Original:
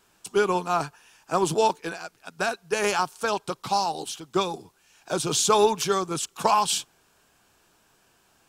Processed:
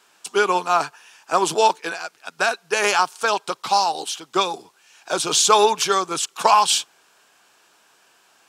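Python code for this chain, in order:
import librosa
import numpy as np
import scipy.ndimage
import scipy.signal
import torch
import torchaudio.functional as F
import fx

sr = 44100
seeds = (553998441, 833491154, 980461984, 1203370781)

y = fx.weighting(x, sr, curve='A')
y = y * librosa.db_to_amplitude(6.5)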